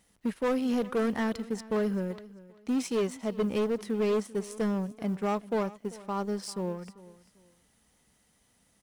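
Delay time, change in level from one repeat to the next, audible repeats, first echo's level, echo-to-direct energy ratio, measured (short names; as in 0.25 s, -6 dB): 0.392 s, -11.5 dB, 2, -19.0 dB, -18.5 dB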